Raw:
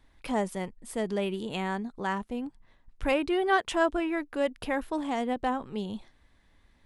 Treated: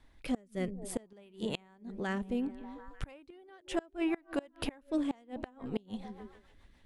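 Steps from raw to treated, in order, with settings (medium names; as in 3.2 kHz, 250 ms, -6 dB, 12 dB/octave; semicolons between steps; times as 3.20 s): repeats whose band climbs or falls 148 ms, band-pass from 170 Hz, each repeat 0.7 oct, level -12 dB; rotary cabinet horn 0.6 Hz, later 7 Hz, at 4.76 s; inverted gate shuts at -24 dBFS, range -29 dB; trim +2.5 dB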